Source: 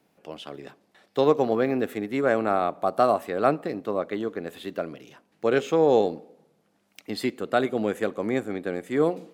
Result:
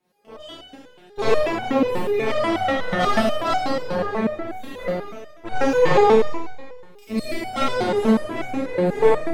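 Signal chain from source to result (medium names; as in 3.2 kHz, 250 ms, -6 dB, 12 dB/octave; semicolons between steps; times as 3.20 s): Chebyshev shaper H 8 -13 dB, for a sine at -6.5 dBFS; Schroeder reverb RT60 1.4 s, combs from 28 ms, DRR -9 dB; resonator arpeggio 8.2 Hz 180–750 Hz; trim +6.5 dB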